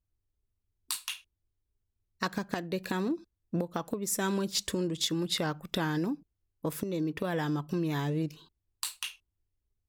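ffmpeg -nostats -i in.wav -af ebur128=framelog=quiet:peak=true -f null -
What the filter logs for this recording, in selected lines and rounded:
Integrated loudness:
  I:         -33.1 LUFS
  Threshold: -43.4 LUFS
Loudness range:
  LRA:         4.6 LU
  Threshold: -53.3 LUFS
  LRA low:   -36.5 LUFS
  LRA high:  -31.8 LUFS
True peak:
  Peak:      -15.1 dBFS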